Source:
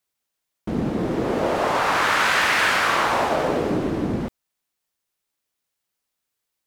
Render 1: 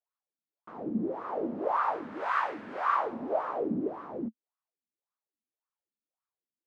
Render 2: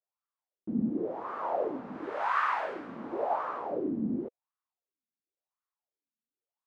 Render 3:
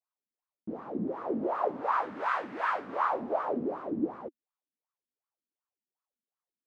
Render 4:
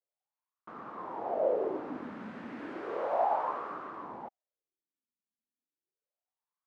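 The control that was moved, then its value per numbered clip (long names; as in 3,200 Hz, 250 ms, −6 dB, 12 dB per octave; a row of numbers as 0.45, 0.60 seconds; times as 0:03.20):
LFO wah, speed: 1.8, 0.93, 2.7, 0.33 Hertz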